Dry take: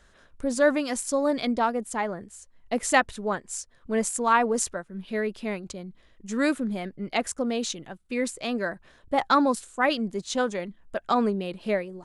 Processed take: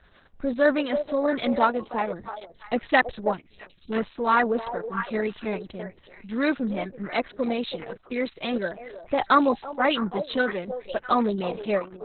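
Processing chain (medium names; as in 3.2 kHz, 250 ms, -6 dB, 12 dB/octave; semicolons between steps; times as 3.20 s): repeats whose band climbs or falls 327 ms, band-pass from 580 Hz, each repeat 1.4 oct, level -7 dB; time-frequency box 3.33–3.90 s, 380–2200 Hz -14 dB; trim +1.5 dB; Opus 6 kbps 48 kHz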